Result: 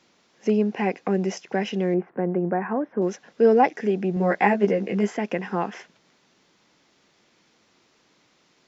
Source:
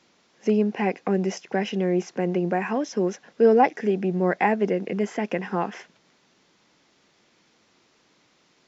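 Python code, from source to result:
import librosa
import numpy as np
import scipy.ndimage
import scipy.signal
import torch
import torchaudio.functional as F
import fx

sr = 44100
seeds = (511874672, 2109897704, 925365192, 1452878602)

y = fx.lowpass(x, sr, hz=1700.0, slope=24, at=(1.94, 3.02))
y = fx.doubler(y, sr, ms=15.0, db=-2.5, at=(4.15, 5.11))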